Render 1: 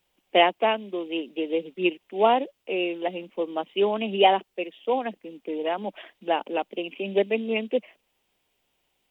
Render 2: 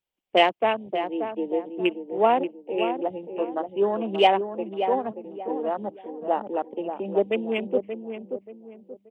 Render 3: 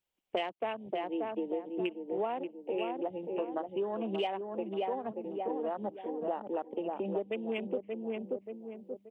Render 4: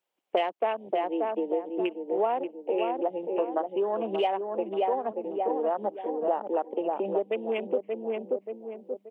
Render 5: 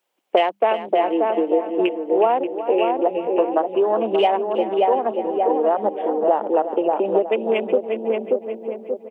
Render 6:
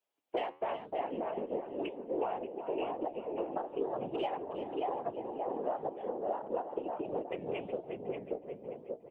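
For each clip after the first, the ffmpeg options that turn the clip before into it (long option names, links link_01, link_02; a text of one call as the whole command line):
ffmpeg -i in.wav -filter_complex "[0:a]afwtdn=0.0251,asplit=2[link_01][link_02];[link_02]adelay=581,lowpass=frequency=1100:poles=1,volume=-7dB,asplit=2[link_03][link_04];[link_04]adelay=581,lowpass=frequency=1100:poles=1,volume=0.36,asplit=2[link_05][link_06];[link_06]adelay=581,lowpass=frequency=1100:poles=1,volume=0.36,asplit=2[link_07][link_08];[link_08]adelay=581,lowpass=frequency=1100:poles=1,volume=0.36[link_09];[link_03][link_05][link_07][link_09]amix=inputs=4:normalize=0[link_10];[link_01][link_10]amix=inputs=2:normalize=0" out.wav
ffmpeg -i in.wav -af "acompressor=threshold=-31dB:ratio=8" out.wav
ffmpeg -i in.wav -af "highpass=frequency=430:poles=1,equalizer=frequency=560:width=0.36:gain=10" out.wav
ffmpeg -i in.wav -filter_complex "[0:a]highpass=140,bandreject=frequency=50:width_type=h:width=6,bandreject=frequency=100:width_type=h:width=6,bandreject=frequency=150:width_type=h:width=6,bandreject=frequency=200:width_type=h:width=6,asplit=2[link_01][link_02];[link_02]aecho=0:1:366|732|1098:0.251|0.0754|0.0226[link_03];[link_01][link_03]amix=inputs=2:normalize=0,volume=9dB" out.wav
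ffmpeg -i in.wav -filter_complex "[0:a]asplit=2[link_01][link_02];[link_02]acompressor=threshold=-27dB:ratio=6,volume=-2dB[link_03];[link_01][link_03]amix=inputs=2:normalize=0,afftfilt=real='hypot(re,im)*cos(2*PI*random(0))':imag='hypot(re,im)*sin(2*PI*random(1))':win_size=512:overlap=0.75,flanger=delay=5.3:depth=7.1:regen=-83:speed=1:shape=sinusoidal,volume=-8.5dB" out.wav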